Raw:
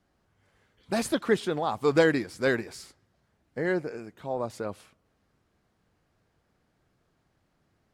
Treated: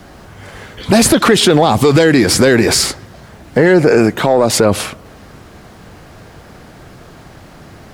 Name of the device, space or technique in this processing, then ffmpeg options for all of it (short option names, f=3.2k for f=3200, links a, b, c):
mastering chain: -filter_complex "[0:a]asettb=1/sr,asplit=3[a][b][c];[a]atrim=end=4.194[d];[b]atrim=start=4.19:end=4.59,asetpts=PTS-STARTPTS,afade=t=in:d=0.004:c=qsin,afade=t=out:st=0.396:d=0.004:c=qsin,highpass=f=250:p=1[e];[c]atrim=start=4.586[f];[d][e]acrossfade=d=0.004:c1=hsin:c2=qsin[g];[g][f]acrossfade=d=0.004:c1=qsin:c2=hsin,equalizer=f=700:t=o:w=0.77:g=1.5,acrossover=split=490|2100[h][i][j];[h]acompressor=threshold=-30dB:ratio=4[k];[i]acompressor=threshold=-38dB:ratio=4[l];[j]acompressor=threshold=-39dB:ratio=4[m];[k][l][m]amix=inputs=3:normalize=0,acompressor=threshold=-30dB:ratio=6,asoftclip=type=tanh:threshold=-25dB,alimiter=level_in=34.5dB:limit=-1dB:release=50:level=0:latency=1,volume=-1dB"